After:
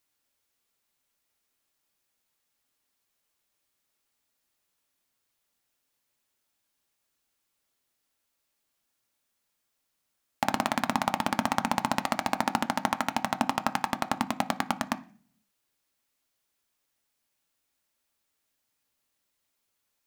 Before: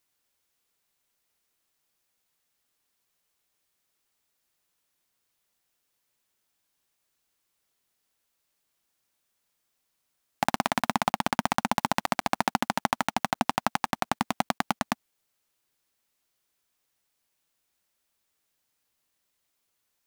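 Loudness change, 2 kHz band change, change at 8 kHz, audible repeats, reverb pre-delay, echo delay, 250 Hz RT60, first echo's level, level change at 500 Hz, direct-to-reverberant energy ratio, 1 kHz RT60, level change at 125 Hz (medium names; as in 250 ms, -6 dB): -1.0 dB, -1.0 dB, -1.5 dB, no echo, 3 ms, no echo, 0.70 s, no echo, -0.5 dB, 9.0 dB, 0.40 s, -2.0 dB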